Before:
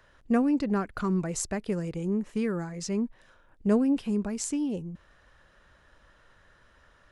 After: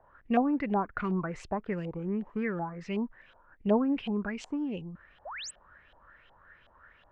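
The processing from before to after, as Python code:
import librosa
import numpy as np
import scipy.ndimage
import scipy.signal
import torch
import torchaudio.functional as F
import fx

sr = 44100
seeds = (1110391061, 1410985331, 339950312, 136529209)

y = fx.filter_lfo_lowpass(x, sr, shape='saw_up', hz=2.7, low_hz=730.0, high_hz=3300.0, q=5.9)
y = fx.spec_paint(y, sr, seeds[0], shape='rise', start_s=5.25, length_s=0.26, low_hz=520.0, high_hz=9000.0, level_db=-36.0)
y = y * 10.0 ** (-4.0 / 20.0)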